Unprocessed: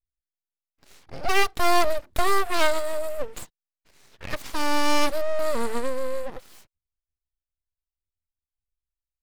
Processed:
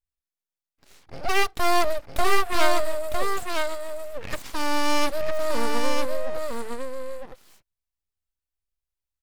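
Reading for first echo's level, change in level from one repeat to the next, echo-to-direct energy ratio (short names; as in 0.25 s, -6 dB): -4.0 dB, no steady repeat, -4.0 dB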